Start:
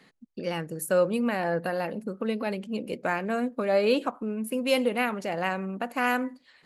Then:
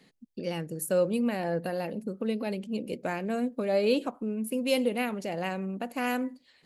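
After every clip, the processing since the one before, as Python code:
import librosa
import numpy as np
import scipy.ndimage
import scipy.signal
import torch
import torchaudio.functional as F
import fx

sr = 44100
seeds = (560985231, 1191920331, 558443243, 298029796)

y = fx.peak_eq(x, sr, hz=1300.0, db=-9.0, octaves=1.6)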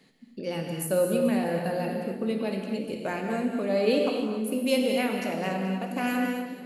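y = fx.echo_split(x, sr, split_hz=470.0, low_ms=557, high_ms=215, feedback_pct=52, wet_db=-13)
y = fx.rev_gated(y, sr, seeds[0], gate_ms=310, shape='flat', drr_db=1.5)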